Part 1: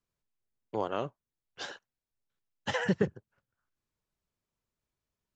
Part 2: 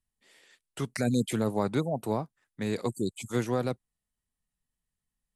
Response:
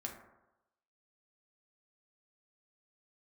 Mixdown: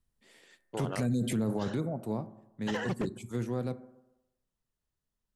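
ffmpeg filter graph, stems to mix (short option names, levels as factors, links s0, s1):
-filter_complex "[0:a]bandreject=f=2300:w=7.1,aeval=exprs='0.0891*(abs(mod(val(0)/0.0891+3,4)-2)-1)':c=same,volume=0.668,asplit=2[s0][s1];[s1]volume=0.0668[s2];[1:a]lowshelf=f=390:g=9,volume=0.668,afade=t=out:st=1.27:d=0.67:silence=0.354813,asplit=2[s3][s4];[s4]volume=0.531[s5];[2:a]atrim=start_sample=2205[s6];[s2][s5]amix=inputs=2:normalize=0[s7];[s7][s6]afir=irnorm=-1:irlink=0[s8];[s0][s3][s8]amix=inputs=3:normalize=0,alimiter=limit=0.0708:level=0:latency=1:release=15"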